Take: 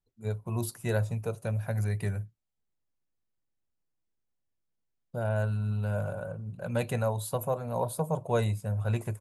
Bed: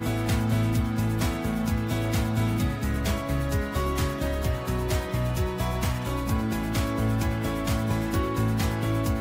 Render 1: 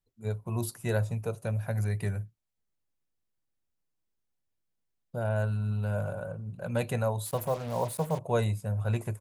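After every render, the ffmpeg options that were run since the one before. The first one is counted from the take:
ffmpeg -i in.wav -filter_complex "[0:a]asettb=1/sr,asplit=3[link_01][link_02][link_03];[link_01]atrim=end=7.264[link_04];[link_02]atrim=start=7.26:end=8.19,asetpts=PTS-STARTPTS,afade=type=in:duration=0.004:curve=qsin,afade=type=out:start_time=0.926:duration=0.004:curve=qsin,acrusher=bits=6:mix=0:aa=0.5[link_05];[link_03]atrim=start=8.186[link_06];[link_04][link_05]acrossfade=duration=0.004:curve1=hsin:curve2=qsin[link_07];[link_07][link_06]acrossfade=duration=0.004:curve1=qsin:curve2=hsin" out.wav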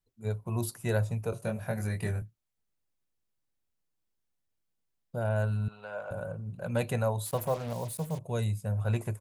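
ffmpeg -i in.wav -filter_complex "[0:a]asettb=1/sr,asplit=3[link_01][link_02][link_03];[link_01]atrim=end=1.304[link_04];[link_02]atrim=start=1.3:end=2.22,asetpts=PTS-STARTPTS,afade=type=in:duration=0.004:curve=qsin,afade=type=out:start_time=0.916:duration=0.004:curve=qsin,asplit=2[link_05][link_06];[link_06]adelay=23,volume=-2.5dB[link_07];[link_05][link_07]amix=inputs=2:normalize=0,atrim=end_sample=40572[link_08];[link_03]atrim=start=2.216[link_09];[link_04][link_08]acrossfade=duration=0.004:curve1=hsin:curve2=qsin[link_10];[link_10][link_09]acrossfade=duration=0.004:curve1=qsin:curve2=hsin,asettb=1/sr,asplit=3[link_11][link_12][link_13];[link_11]atrim=end=5.684[link_14];[link_12]atrim=start=5.68:end=6.11,asetpts=PTS-STARTPTS,afade=type=in:duration=0.004:curve=qsin,afade=type=out:start_time=0.426:duration=0.004:curve=qsin,highpass=580,lowpass=4000[link_15];[link_13]atrim=start=6.106[link_16];[link_14][link_15]acrossfade=duration=0.004:curve1=hsin:curve2=qsin[link_17];[link_17][link_16]acrossfade=duration=0.004:curve1=qsin:curve2=hsin,asettb=1/sr,asplit=3[link_18][link_19][link_20];[link_18]atrim=end=7.734[link_21];[link_19]atrim=start=7.73:end=8.65,asetpts=PTS-STARTPTS,afade=type=in:duration=0.004:curve=qsin,afade=type=out:start_time=0.916:duration=0.004:curve=qsin,equalizer=frequency=890:width_type=o:width=2.9:gain=-9.5[link_22];[link_20]atrim=start=8.646[link_23];[link_21][link_22]acrossfade=duration=0.004:curve1=hsin:curve2=qsin[link_24];[link_24][link_23]acrossfade=duration=0.004:curve1=qsin:curve2=hsin" out.wav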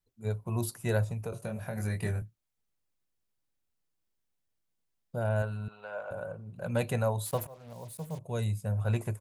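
ffmpeg -i in.wav -filter_complex "[0:a]asplit=3[link_01][link_02][link_03];[link_01]afade=type=out:start_time=1.04:duration=0.02[link_04];[link_02]acompressor=threshold=-31dB:ratio=6:attack=3.2:release=140:knee=1:detection=peak,afade=type=in:start_time=1.04:duration=0.02,afade=type=out:start_time=1.76:duration=0.02[link_05];[link_03]afade=type=in:start_time=1.76:duration=0.02[link_06];[link_04][link_05][link_06]amix=inputs=3:normalize=0,asettb=1/sr,asplit=3[link_07][link_08][link_09];[link_07]atrim=end=5.424[link_10];[link_08]atrim=start=5.42:end=6.56,asetpts=PTS-STARTPTS,afade=type=in:duration=0.004:curve=qsin,afade=type=out:start_time=1.136:duration=0.004:curve=qsin,bass=frequency=250:gain=-7,treble=frequency=4000:gain=-5[link_11];[link_09]atrim=start=6.556[link_12];[link_10][link_11]acrossfade=duration=0.004:curve1=hsin:curve2=qsin[link_13];[link_13][link_12]acrossfade=duration=0.004:curve1=qsin:curve2=hsin,asplit=2[link_14][link_15];[link_14]atrim=end=7.47,asetpts=PTS-STARTPTS,afade=type=out:start_time=7.466:duration=0.004:curve=hsin:silence=0.0630957[link_16];[link_15]atrim=start=7.47,asetpts=PTS-STARTPTS,afade=type=in:duration=1.09:silence=0.0630957[link_17];[link_16][link_17]concat=n=2:v=0:a=1" out.wav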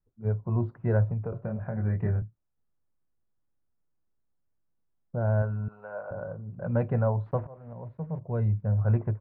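ffmpeg -i in.wav -af "lowpass=frequency=1600:width=0.5412,lowpass=frequency=1600:width=1.3066,lowshelf=frequency=350:gain=6" out.wav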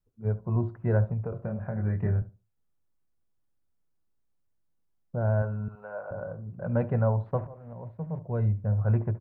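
ffmpeg -i in.wav -filter_complex "[0:a]asplit=2[link_01][link_02];[link_02]adelay=71,lowpass=frequency=970:poles=1,volume=-14dB,asplit=2[link_03][link_04];[link_04]adelay=71,lowpass=frequency=970:poles=1,volume=0.23,asplit=2[link_05][link_06];[link_06]adelay=71,lowpass=frequency=970:poles=1,volume=0.23[link_07];[link_01][link_03][link_05][link_07]amix=inputs=4:normalize=0" out.wav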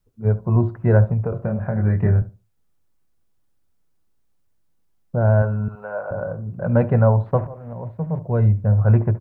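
ffmpeg -i in.wav -af "volume=9.5dB" out.wav

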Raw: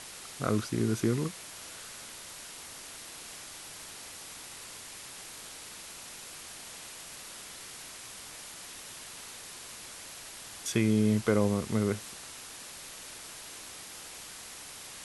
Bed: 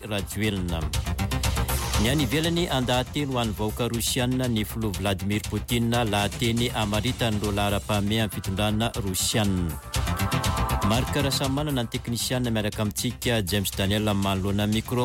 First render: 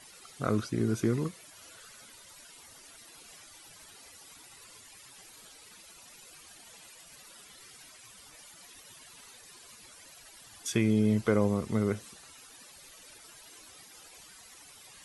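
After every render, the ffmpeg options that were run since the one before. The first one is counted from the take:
ffmpeg -i in.wav -af "afftdn=noise_reduction=14:noise_floor=-46" out.wav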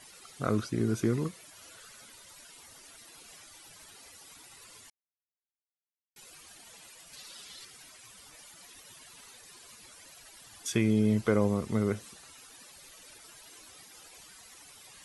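ffmpeg -i in.wav -filter_complex "[0:a]asettb=1/sr,asplit=3[link_01][link_02][link_03];[link_01]atrim=end=7.134[link_04];[link_02]atrim=start=7.13:end=7.65,asetpts=PTS-STARTPTS,afade=type=in:duration=0.004:curve=qsin,afade=type=out:start_time=0.516:duration=0.004:curve=qsin,equalizer=frequency=4200:width_type=o:width=1.3:gain=8.5[link_05];[link_03]atrim=start=7.646[link_06];[link_04][link_05]acrossfade=duration=0.004:curve1=hsin:curve2=qsin[link_07];[link_07][link_06]acrossfade=duration=0.004:curve1=qsin:curve2=hsin,asplit=3[link_08][link_09][link_10];[link_08]atrim=end=4.9,asetpts=PTS-STARTPTS,afade=type=out:start_time=4.896:duration=0.004:curve=hsin[link_11];[link_09]atrim=start=4.9:end=6.16,asetpts=PTS-STARTPTS,volume=0[link_12];[link_10]atrim=start=6.16,asetpts=PTS-STARTPTS,afade=type=in:duration=0.004:curve=hsin[link_13];[link_11][link_12][link_13]concat=n=3:v=0:a=1" out.wav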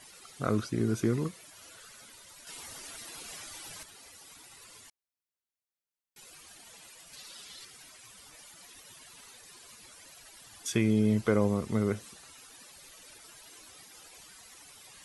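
ffmpeg -i in.wav -filter_complex "[0:a]asplit=3[link_01][link_02][link_03];[link_01]atrim=end=2.472[link_04];[link_02]atrim=start=2.468:end=3.832,asetpts=PTS-STARTPTS,volume=7.5dB[link_05];[link_03]atrim=start=3.828[link_06];[link_04][link_05]acrossfade=duration=0.004:curve1=hsin:curve2=hsin[link_07];[link_07][link_06]acrossfade=duration=0.004:curve1=hsin:curve2=hsin" out.wav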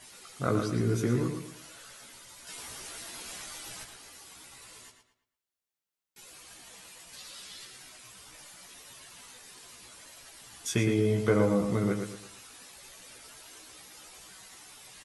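ffmpeg -i in.wav -filter_complex "[0:a]asplit=2[link_01][link_02];[link_02]adelay=16,volume=-4dB[link_03];[link_01][link_03]amix=inputs=2:normalize=0,asplit=2[link_04][link_05];[link_05]adelay=114,lowpass=frequency=4600:poles=1,volume=-6dB,asplit=2[link_06][link_07];[link_07]adelay=114,lowpass=frequency=4600:poles=1,volume=0.36,asplit=2[link_08][link_09];[link_09]adelay=114,lowpass=frequency=4600:poles=1,volume=0.36,asplit=2[link_10][link_11];[link_11]adelay=114,lowpass=frequency=4600:poles=1,volume=0.36[link_12];[link_04][link_06][link_08][link_10][link_12]amix=inputs=5:normalize=0" out.wav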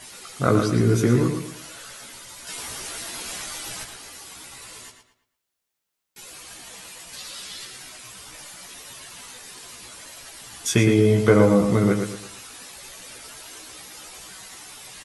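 ffmpeg -i in.wav -af "volume=9dB" out.wav

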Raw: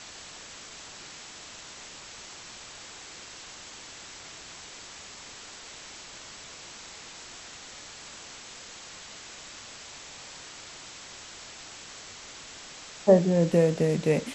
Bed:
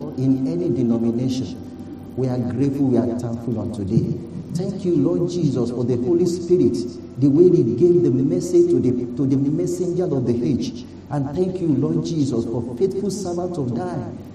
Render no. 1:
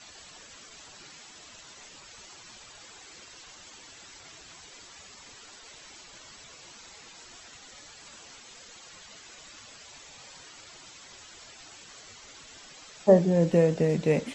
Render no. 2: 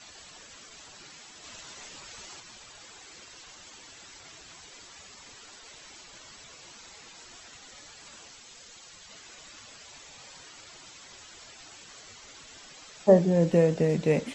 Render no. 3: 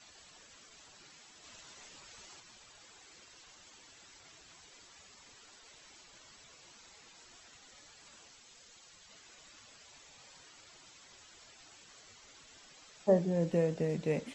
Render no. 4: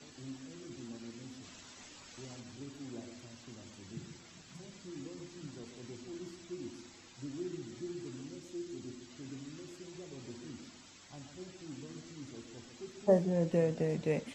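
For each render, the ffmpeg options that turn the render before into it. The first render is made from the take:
ffmpeg -i in.wav -af "afftdn=noise_reduction=11:noise_floor=-46" out.wav
ffmpeg -i in.wav -filter_complex "[0:a]asettb=1/sr,asplit=3[link_01][link_02][link_03];[link_01]atrim=end=8.284[link_04];[link_02]atrim=start=8.28:end=9.09,asetpts=PTS-STARTPTS,afade=type=in:duration=0.004:curve=qsin,afade=type=out:start_time=0.806:duration=0.004:curve=qsin,acrossover=split=140|3000[link_05][link_06][link_07];[link_06]acompressor=threshold=-53dB:ratio=6:attack=3.2:release=140:knee=2.83:detection=peak[link_08];[link_05][link_08][link_07]amix=inputs=3:normalize=0[link_09];[link_03]atrim=start=9.086[link_10];[link_04][link_09]acrossfade=duration=0.004:curve1=hsin:curve2=qsin[link_11];[link_11][link_10]acrossfade=duration=0.004:curve1=qsin:curve2=hsin,asplit=3[link_12][link_13][link_14];[link_12]atrim=end=1.442[link_15];[link_13]atrim=start=1.438:end=2.402,asetpts=PTS-STARTPTS,volume=3.5dB[link_16];[link_14]atrim=start=2.398[link_17];[link_15][link_16]acrossfade=duration=0.004:curve1=hsin:curve2=hsin[link_18];[link_18][link_17]acrossfade=duration=0.004:curve1=hsin:curve2=hsin" out.wav
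ffmpeg -i in.wav -af "volume=-8.5dB" out.wav
ffmpeg -i in.wav -i bed.wav -filter_complex "[1:a]volume=-28dB[link_01];[0:a][link_01]amix=inputs=2:normalize=0" out.wav

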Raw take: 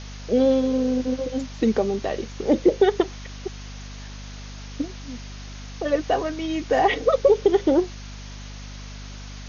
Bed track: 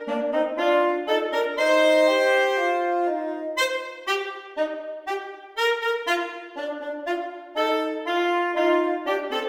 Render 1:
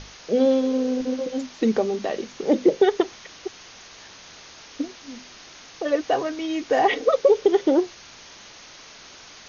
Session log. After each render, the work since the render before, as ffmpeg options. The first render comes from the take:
ffmpeg -i in.wav -af "bandreject=frequency=50:width_type=h:width=6,bandreject=frequency=100:width_type=h:width=6,bandreject=frequency=150:width_type=h:width=6,bandreject=frequency=200:width_type=h:width=6,bandreject=frequency=250:width_type=h:width=6" out.wav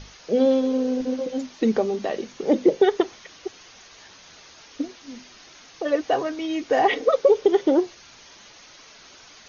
ffmpeg -i in.wav -af "afftdn=noise_reduction=6:noise_floor=-46" out.wav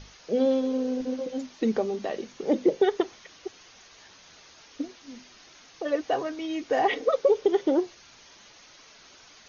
ffmpeg -i in.wav -af "volume=-4.5dB" out.wav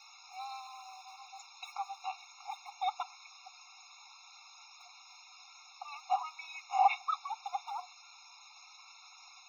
ffmpeg -i in.wav -filter_complex "[0:a]acrossover=split=120|550|3000[link_01][link_02][link_03][link_04];[link_01]acrusher=samples=31:mix=1:aa=0.000001[link_05];[link_05][link_02][link_03][link_04]amix=inputs=4:normalize=0,afftfilt=real='re*eq(mod(floor(b*sr/1024/710),2),1)':imag='im*eq(mod(floor(b*sr/1024/710),2),1)':win_size=1024:overlap=0.75" out.wav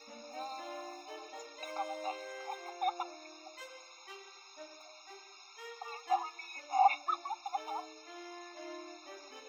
ffmpeg -i in.wav -i bed.wav -filter_complex "[1:a]volume=-26.5dB[link_01];[0:a][link_01]amix=inputs=2:normalize=0" out.wav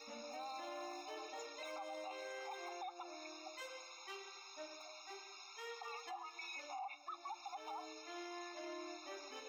ffmpeg -i in.wav -af "acompressor=threshold=-39dB:ratio=16,alimiter=level_in=15.5dB:limit=-24dB:level=0:latency=1:release=13,volume=-15.5dB" out.wav

